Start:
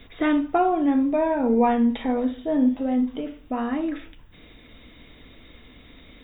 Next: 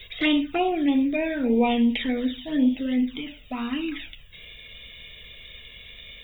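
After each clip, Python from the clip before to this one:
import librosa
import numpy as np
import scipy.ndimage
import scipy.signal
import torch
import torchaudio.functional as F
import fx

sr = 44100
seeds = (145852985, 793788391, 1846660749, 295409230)

y = fx.high_shelf_res(x, sr, hz=1800.0, db=12.5, q=1.5)
y = fx.env_flanger(y, sr, rest_ms=2.1, full_db=-16.5)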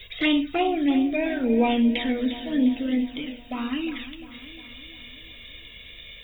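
y = fx.echo_feedback(x, sr, ms=353, feedback_pct=57, wet_db=-13.5)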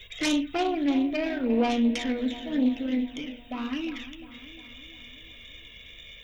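y = fx.self_delay(x, sr, depth_ms=0.16)
y = F.gain(torch.from_numpy(y), -3.0).numpy()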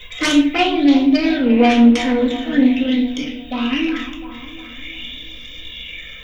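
y = fx.room_shoebox(x, sr, seeds[0], volume_m3=550.0, walls='furnished', distance_m=2.0)
y = fx.bell_lfo(y, sr, hz=0.46, low_hz=990.0, high_hz=4900.0, db=10)
y = F.gain(torch.from_numpy(y), 6.5).numpy()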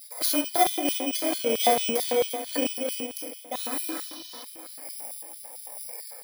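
y = fx.bit_reversed(x, sr, seeds[1], block=16)
y = fx.filter_lfo_highpass(y, sr, shape='square', hz=4.5, low_hz=550.0, high_hz=3800.0, q=2.2)
y = fx.spec_repair(y, sr, seeds[2], start_s=3.76, length_s=0.65, low_hz=3000.0, high_hz=6400.0, source='before')
y = F.gain(torch.from_numpy(y), -6.5).numpy()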